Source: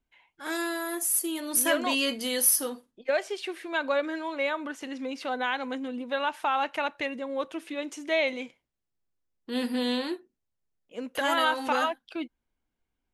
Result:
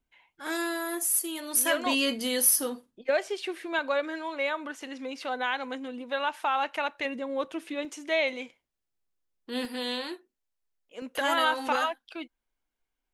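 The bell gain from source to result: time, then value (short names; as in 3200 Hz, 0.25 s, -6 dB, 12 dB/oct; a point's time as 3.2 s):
bell 120 Hz 2.8 oct
0 dB
from 1.17 s -9 dB
from 1.86 s +3 dB
from 3.79 s -6.5 dB
from 7.05 s +1.5 dB
from 7.85 s -5.5 dB
from 9.65 s -14 dB
from 11.02 s -3 dB
from 11.76 s -12 dB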